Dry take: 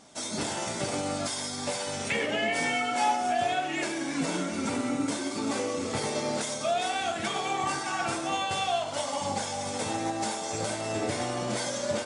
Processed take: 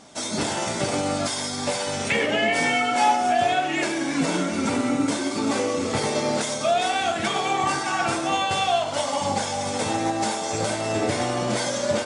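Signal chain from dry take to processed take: treble shelf 8.3 kHz -5 dB; trim +6.5 dB

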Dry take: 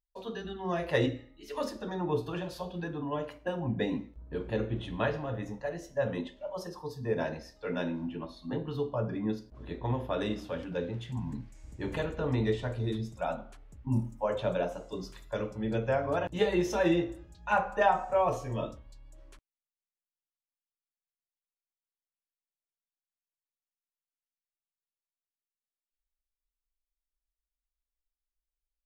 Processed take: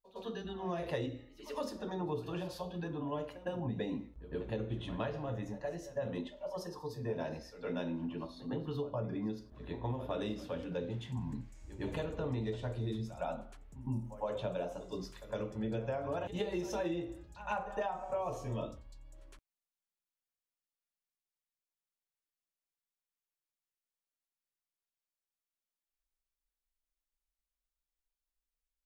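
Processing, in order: dynamic bell 1.7 kHz, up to -5 dB, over -50 dBFS, Q 1.6; compression 10:1, threshold -30 dBFS, peak gain reduction 11.5 dB; reverse echo 110 ms -14.5 dB; trim -2.5 dB

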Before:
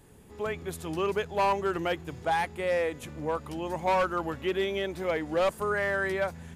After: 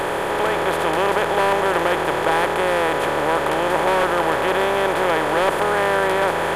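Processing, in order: spectral levelling over time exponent 0.2; trim +1 dB

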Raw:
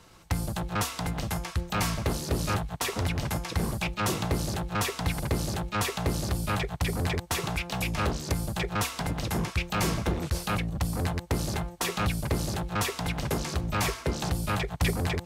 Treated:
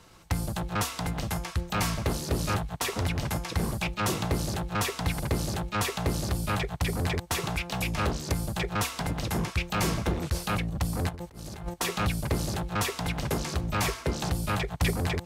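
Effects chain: 11.09–11.74 s: compressor with a negative ratio -36 dBFS, ratio -0.5

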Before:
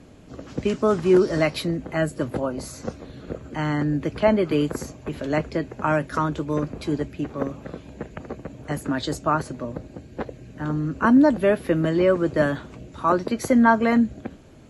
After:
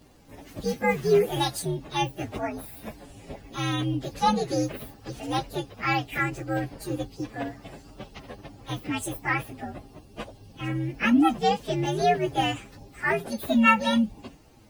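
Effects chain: frequency axis rescaled in octaves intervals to 129%; tilt shelf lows -3.5 dB, about 1.4 kHz

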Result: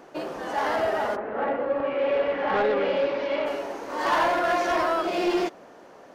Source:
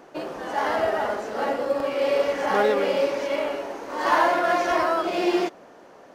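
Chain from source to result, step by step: 1.15–3.45 s: low-pass 2.1 kHz -> 4.5 kHz 24 dB/octave; saturation -16.5 dBFS, distortion -17 dB

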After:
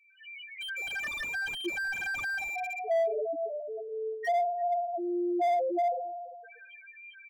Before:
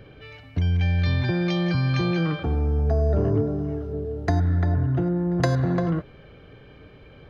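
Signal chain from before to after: every event in the spectrogram widened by 60 ms; in parallel at -0.5 dB: peak limiter -15.5 dBFS, peak gain reduction 9.5 dB; on the sum: high-pass 970 Hz 12 dB/octave; 2.39–2.91 s: distance through air 90 m; spring tank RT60 1.6 s, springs 57 ms, chirp 70 ms, DRR 1.5 dB; loudest bins only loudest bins 1; echo from a far wall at 59 m, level -27 dB; dynamic bell 2.6 kHz, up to +4 dB, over -47 dBFS, Q 2.5; level rider gain up to 10.5 dB; slew-rate limiter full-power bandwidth 57 Hz; trim -2.5 dB

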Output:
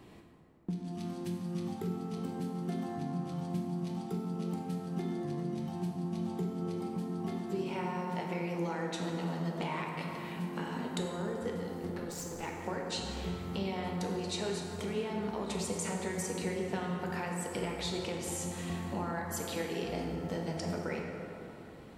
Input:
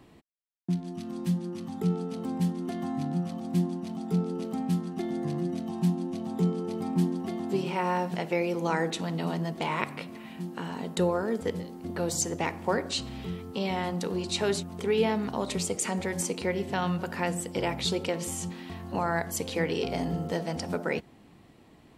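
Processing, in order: compression 6:1, threshold -36 dBFS, peak gain reduction 15 dB; 11.90–12.43 s: valve stage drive 37 dB, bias 0.75; plate-style reverb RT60 3.1 s, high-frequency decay 0.45×, DRR -0.5 dB

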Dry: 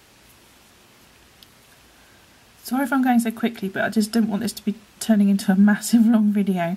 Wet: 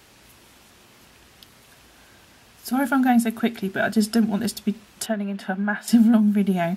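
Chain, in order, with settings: 5.06–5.88 s: three-band isolator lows -13 dB, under 390 Hz, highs -17 dB, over 3.2 kHz

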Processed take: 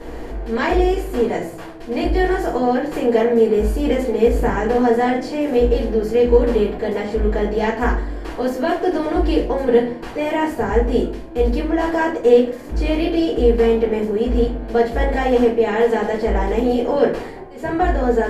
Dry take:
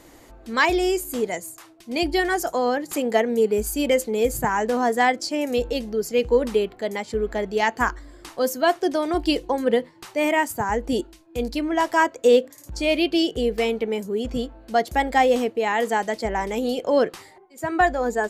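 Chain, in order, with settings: spectral levelling over time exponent 0.6; tilt EQ -2.5 dB/octave; simulated room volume 40 m³, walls mixed, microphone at 1.8 m; trim -14.5 dB

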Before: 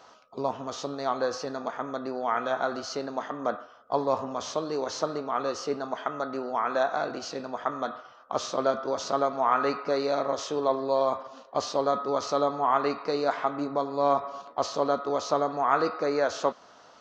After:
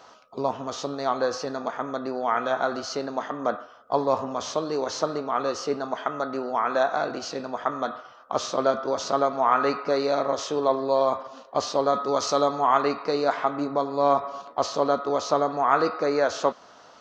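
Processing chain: 11.93–12.81 s: treble shelf 5 kHz -> 3.7 kHz +9 dB; trim +3 dB

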